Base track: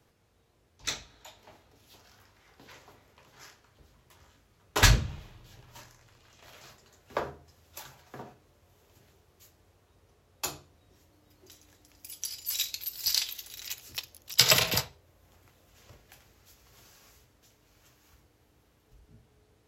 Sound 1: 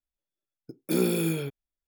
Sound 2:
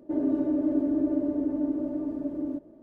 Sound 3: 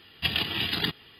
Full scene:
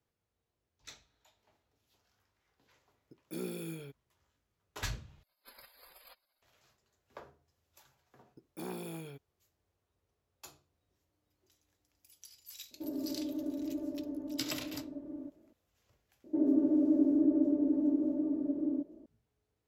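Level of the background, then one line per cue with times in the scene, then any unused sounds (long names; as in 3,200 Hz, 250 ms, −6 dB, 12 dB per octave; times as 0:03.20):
base track −18 dB
0:02.42: mix in 1 −15 dB
0:05.23: overwrite with 3 −11 dB + gate on every frequency bin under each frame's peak −20 dB weak
0:07.68: mix in 1 −14.5 dB + saturating transformer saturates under 760 Hz
0:12.71: mix in 2 −12 dB
0:16.24: mix in 2 −13.5 dB + parametric band 330 Hz +12.5 dB 2.2 octaves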